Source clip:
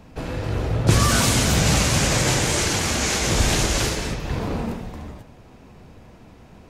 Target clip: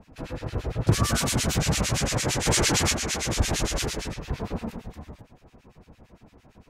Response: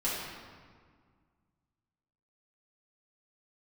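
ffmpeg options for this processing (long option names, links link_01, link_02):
-filter_complex "[0:a]asplit=3[link_01][link_02][link_03];[link_01]afade=type=out:start_time=2.45:duration=0.02[link_04];[link_02]acontrast=69,afade=type=in:start_time=2.45:duration=0.02,afade=type=out:start_time=2.92:duration=0.02[link_05];[link_03]afade=type=in:start_time=2.92:duration=0.02[link_06];[link_04][link_05][link_06]amix=inputs=3:normalize=0,acrossover=split=1500[link_07][link_08];[link_07]aeval=exprs='val(0)*(1-1/2+1/2*cos(2*PI*8.8*n/s))':channel_layout=same[link_09];[link_08]aeval=exprs='val(0)*(1-1/2-1/2*cos(2*PI*8.8*n/s))':channel_layout=same[link_10];[link_09][link_10]amix=inputs=2:normalize=0,volume=-2dB"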